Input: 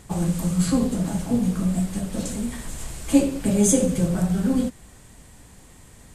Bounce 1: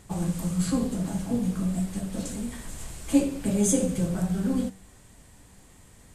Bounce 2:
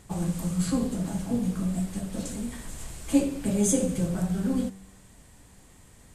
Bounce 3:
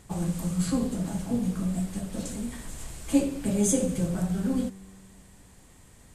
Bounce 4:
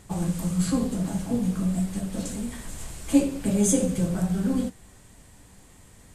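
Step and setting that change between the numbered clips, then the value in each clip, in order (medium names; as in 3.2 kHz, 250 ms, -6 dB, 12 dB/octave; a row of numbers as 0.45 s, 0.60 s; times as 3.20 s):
feedback comb, decay: 0.47 s, 0.98 s, 2.2 s, 0.19 s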